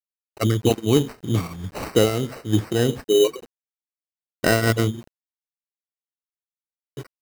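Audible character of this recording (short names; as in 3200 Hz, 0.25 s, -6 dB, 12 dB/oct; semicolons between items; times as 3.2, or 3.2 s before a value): a quantiser's noise floor 8-bit, dither none; tremolo triangle 3.2 Hz, depth 65%; aliases and images of a low sample rate 3400 Hz, jitter 0%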